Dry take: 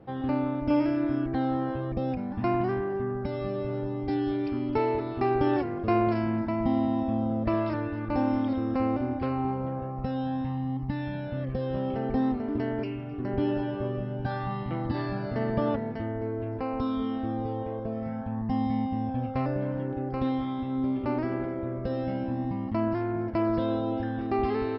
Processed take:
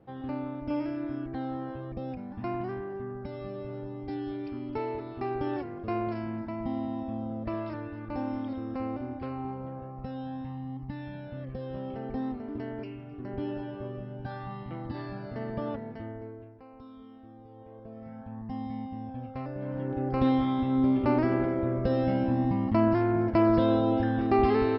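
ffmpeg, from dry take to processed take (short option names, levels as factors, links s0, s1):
-af "volume=6.68,afade=t=out:st=16.08:d=0.47:silence=0.237137,afade=t=in:st=17.48:d=0.84:silence=0.281838,afade=t=in:st=19.54:d=0.74:silence=0.237137"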